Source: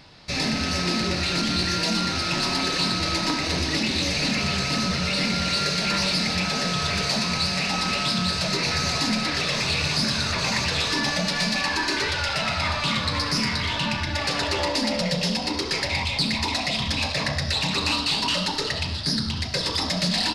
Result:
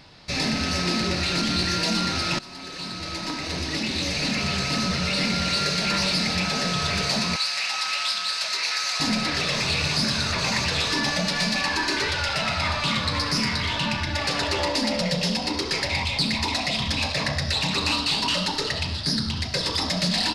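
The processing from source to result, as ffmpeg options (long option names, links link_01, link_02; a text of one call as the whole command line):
ffmpeg -i in.wav -filter_complex "[0:a]asettb=1/sr,asplit=3[link_01][link_02][link_03];[link_01]atrim=end=7.364[link_04];[link_02]atrim=start=7.36:end=9,asetpts=PTS-STARTPTS,afade=type=in:duration=0.004:curve=qsin,afade=type=out:start_time=1.636:duration=0.004:curve=qsin,highpass=1100[link_05];[link_03]atrim=start=8.996[link_06];[link_04][link_05]acrossfade=duration=0.004:curve1=hsin:curve2=qsin[link_07];[link_07][link_06]acrossfade=duration=0.004:curve1=qsin:curve2=hsin,asplit=2[link_08][link_09];[link_08]atrim=end=2.39,asetpts=PTS-STARTPTS,afade=type=out:start_time=2.386:duration=0.004:curve=hsin:silence=0.105925[link_10];[link_09]atrim=start=2.39,asetpts=PTS-STARTPTS,afade=type=in:duration=3.01:curve=qsin:silence=0.105925[link_11];[link_10][link_11]concat=n=2:v=0:a=1" out.wav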